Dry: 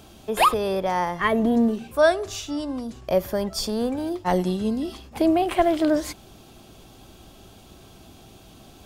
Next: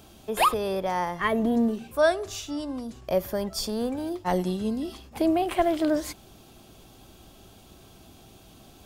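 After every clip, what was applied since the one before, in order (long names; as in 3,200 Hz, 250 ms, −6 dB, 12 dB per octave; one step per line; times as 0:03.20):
high-shelf EQ 11,000 Hz +5 dB
level −3.5 dB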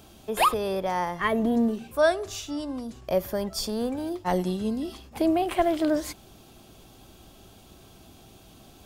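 no processing that can be heard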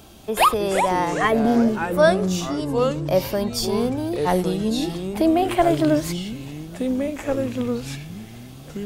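delay with pitch and tempo change per echo 245 ms, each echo −4 semitones, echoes 3, each echo −6 dB
level +5 dB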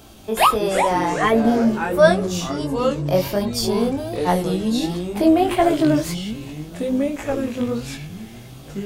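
chorus effect 1.4 Hz, delay 17 ms, depth 5.2 ms
level +4.5 dB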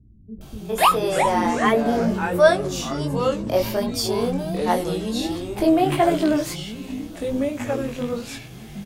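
multiband delay without the direct sound lows, highs 410 ms, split 220 Hz
level −1 dB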